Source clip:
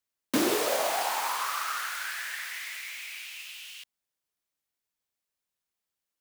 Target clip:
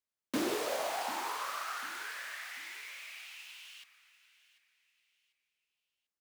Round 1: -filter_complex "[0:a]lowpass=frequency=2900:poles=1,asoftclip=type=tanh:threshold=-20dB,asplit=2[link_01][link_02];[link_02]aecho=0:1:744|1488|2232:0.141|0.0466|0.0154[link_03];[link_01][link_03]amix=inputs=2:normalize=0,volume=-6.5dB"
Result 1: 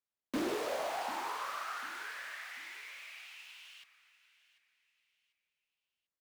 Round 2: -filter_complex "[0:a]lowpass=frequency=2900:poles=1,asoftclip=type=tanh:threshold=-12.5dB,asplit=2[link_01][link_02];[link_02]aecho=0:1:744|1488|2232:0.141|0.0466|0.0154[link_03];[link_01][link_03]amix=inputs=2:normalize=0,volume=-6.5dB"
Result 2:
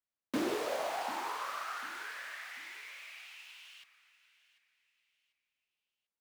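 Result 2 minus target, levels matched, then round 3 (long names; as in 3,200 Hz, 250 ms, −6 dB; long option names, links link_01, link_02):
8,000 Hz band −4.5 dB
-filter_complex "[0:a]lowpass=frequency=7100:poles=1,asoftclip=type=tanh:threshold=-12.5dB,asplit=2[link_01][link_02];[link_02]aecho=0:1:744|1488|2232:0.141|0.0466|0.0154[link_03];[link_01][link_03]amix=inputs=2:normalize=0,volume=-6.5dB"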